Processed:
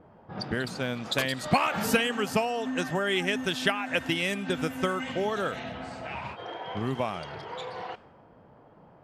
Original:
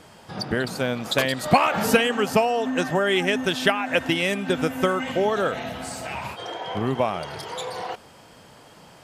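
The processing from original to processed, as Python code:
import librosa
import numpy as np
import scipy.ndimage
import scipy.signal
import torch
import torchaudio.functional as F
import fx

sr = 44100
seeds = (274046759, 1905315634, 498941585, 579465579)

y = fx.dynamic_eq(x, sr, hz=580.0, q=0.79, threshold_db=-32.0, ratio=4.0, max_db=-4)
y = fx.env_lowpass(y, sr, base_hz=810.0, full_db=-22.5)
y = y * 10.0 ** (-4.0 / 20.0)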